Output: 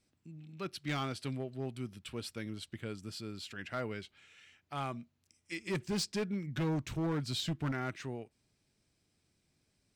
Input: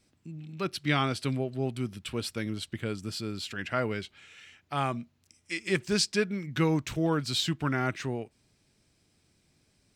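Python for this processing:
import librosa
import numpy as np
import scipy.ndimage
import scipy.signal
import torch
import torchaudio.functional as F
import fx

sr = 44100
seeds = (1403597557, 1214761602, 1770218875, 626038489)

y = fx.low_shelf(x, sr, hz=440.0, db=6.5, at=(5.52, 7.72))
y = np.clip(y, -10.0 ** (-21.5 / 20.0), 10.0 ** (-21.5 / 20.0))
y = y * 10.0 ** (-8.0 / 20.0)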